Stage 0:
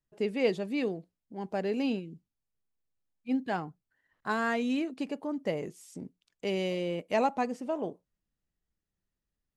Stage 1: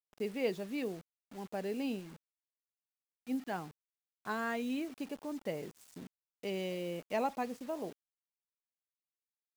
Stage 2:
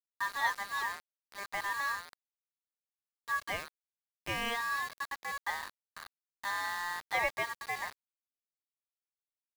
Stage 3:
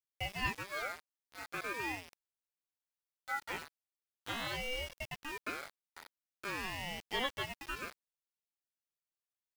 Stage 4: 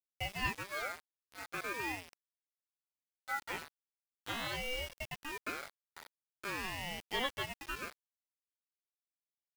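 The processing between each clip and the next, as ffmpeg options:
ffmpeg -i in.wav -af "acrusher=bits=7:mix=0:aa=0.000001,volume=-6.5dB" out.wav
ffmpeg -i in.wav -af "aeval=exprs='val(0)*sin(2*PI*1400*n/s)':channel_layout=same,equalizer=frequency=260:width_type=o:width=0.89:gain=-5.5,aeval=exprs='val(0)*gte(abs(val(0)),0.00596)':channel_layout=same,volume=5dB" out.wav
ffmpeg -i in.wav -af "aeval=exprs='val(0)*sin(2*PI*700*n/s+700*0.65/0.42*sin(2*PI*0.42*n/s))':channel_layout=same,volume=-1.5dB" out.wav
ffmpeg -i in.wav -af "acrusher=bits=7:mix=0:aa=0.000001" out.wav

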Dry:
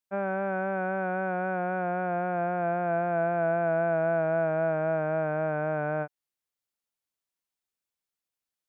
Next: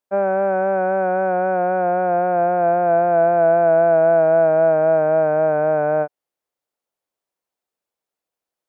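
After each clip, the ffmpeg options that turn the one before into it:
ffmpeg -i in.wav -af "equalizer=frequency=560:width_type=o:width=2.2:gain=13" out.wav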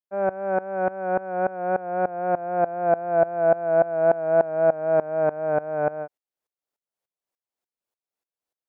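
ffmpeg -i in.wav -af "aeval=exprs='val(0)*pow(10,-20*if(lt(mod(-3.4*n/s,1),2*abs(-3.4)/1000),1-mod(-3.4*n/s,1)/(2*abs(-3.4)/1000),(mod(-3.4*n/s,1)-2*abs(-3.4)/1000)/(1-2*abs(-3.4)/1000))/20)':channel_layout=same" out.wav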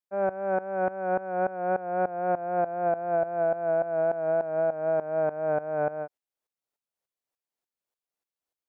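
ffmpeg -i in.wav -af "alimiter=limit=-15.5dB:level=0:latency=1:release=12,volume=-2dB" out.wav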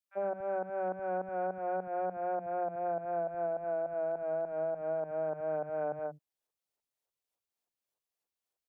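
ffmpeg -i in.wav -filter_complex "[0:a]acompressor=threshold=-31dB:ratio=6,acrossover=split=200|1600[link_01][link_02][link_03];[link_02]adelay=40[link_04];[link_01]adelay=110[link_05];[link_05][link_04][link_03]amix=inputs=3:normalize=0" out.wav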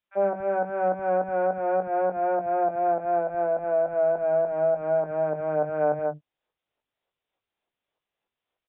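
ffmpeg -i in.wav -filter_complex "[0:a]asplit=2[link_01][link_02];[link_02]adelay=20,volume=-7.5dB[link_03];[link_01][link_03]amix=inputs=2:normalize=0,aresample=8000,aresample=44100,volume=9dB" out.wav

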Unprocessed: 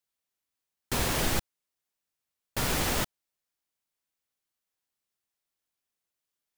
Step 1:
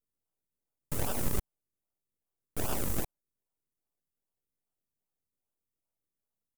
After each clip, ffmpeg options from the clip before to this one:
ffmpeg -i in.wav -filter_complex "[0:a]aecho=1:1:1.4:0.93,aeval=exprs='abs(val(0))':channel_layout=same,acrossover=split=6700[link_01][link_02];[link_01]acrusher=samples=41:mix=1:aa=0.000001:lfo=1:lforange=41:lforate=2.5[link_03];[link_03][link_02]amix=inputs=2:normalize=0,volume=-4.5dB" out.wav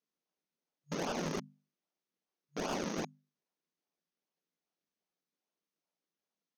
ffmpeg -i in.wav -af "bandreject=frequency=50:width_type=h:width=6,bandreject=frequency=100:width_type=h:width=6,bandreject=frequency=150:width_type=h:width=6,bandreject=frequency=200:width_type=h:width=6,bandreject=frequency=250:width_type=h:width=6,afftfilt=real='re*between(b*sr/4096,150,6600)':imag='im*between(b*sr/4096,150,6600)':win_size=4096:overlap=0.75,asoftclip=type=hard:threshold=-34.5dB,volume=3dB" out.wav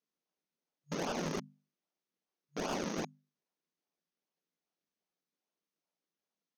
ffmpeg -i in.wav -af anull out.wav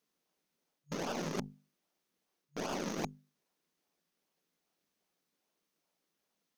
ffmpeg -i in.wav -af "areverse,acompressor=threshold=-44dB:ratio=10,areverse,aeval=exprs='0.0158*(cos(1*acos(clip(val(0)/0.0158,-1,1)))-cos(1*PI/2))+0.00562*(cos(2*acos(clip(val(0)/0.0158,-1,1)))-cos(2*PI/2))+0.00126*(cos(8*acos(clip(val(0)/0.0158,-1,1)))-cos(8*PI/2))':channel_layout=same,volume=8.5dB" out.wav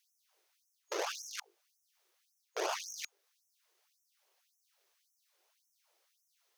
ffmpeg -i in.wav -filter_complex "[0:a]asplit=2[link_01][link_02];[link_02]acompressor=threshold=-45dB:ratio=16,volume=0dB[link_03];[link_01][link_03]amix=inputs=2:normalize=0,afftfilt=real='re*gte(b*sr/1024,310*pow(5500/310,0.5+0.5*sin(2*PI*1.8*pts/sr)))':imag='im*gte(b*sr/1024,310*pow(5500/310,0.5+0.5*sin(2*PI*1.8*pts/sr)))':win_size=1024:overlap=0.75,volume=2.5dB" out.wav

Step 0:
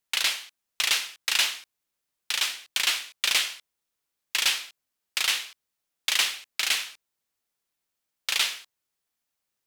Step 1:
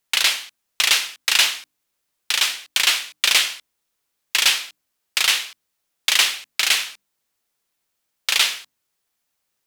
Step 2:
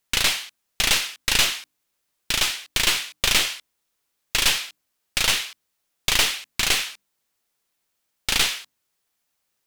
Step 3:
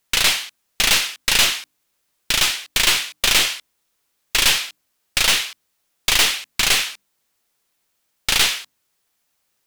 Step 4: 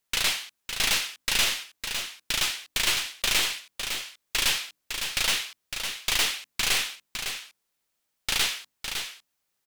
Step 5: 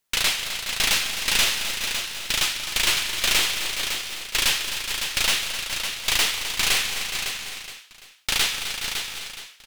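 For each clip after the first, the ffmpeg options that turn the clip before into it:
ffmpeg -i in.wav -af "bandreject=frequency=50:width_type=h:width=6,bandreject=frequency=100:width_type=h:width=6,bandreject=frequency=150:width_type=h:width=6,bandreject=frequency=200:width_type=h:width=6,bandreject=frequency=250:width_type=h:width=6,bandreject=frequency=300:width_type=h:width=6,volume=7dB" out.wav
ffmpeg -i in.wav -af "aeval=exprs='clip(val(0),-1,0.0631)':channel_layout=same" out.wav
ffmpeg -i in.wav -af "apsyclip=11dB,volume=-6dB" out.wav
ffmpeg -i in.wav -af "aecho=1:1:557:0.447,volume=-8.5dB" out.wav
ffmpeg -i in.wav -af "aecho=1:1:201|213|259|419|758:0.106|0.178|0.316|0.316|0.119,volume=3dB" out.wav

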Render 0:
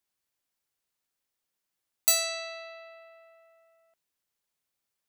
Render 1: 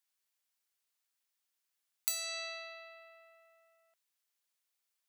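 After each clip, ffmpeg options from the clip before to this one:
ffmpeg -i in.wav -af "acompressor=threshold=-32dB:ratio=6,highpass=frequency=1300:poles=1" out.wav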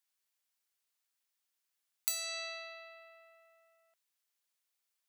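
ffmpeg -i in.wav -af anull out.wav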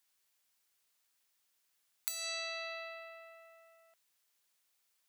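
ffmpeg -i in.wav -af "acompressor=threshold=-43dB:ratio=5,volume=7dB" out.wav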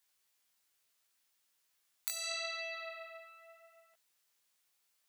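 ffmpeg -i in.wav -af "flanger=delay=15.5:depth=5:speed=0.75,volume=3.5dB" out.wav

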